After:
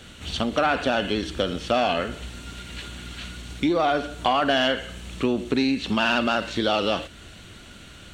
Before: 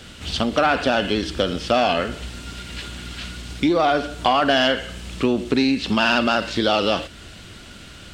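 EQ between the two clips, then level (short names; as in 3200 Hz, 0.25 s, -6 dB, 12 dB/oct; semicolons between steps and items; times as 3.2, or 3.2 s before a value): notch 5000 Hz, Q 6.4; -3.5 dB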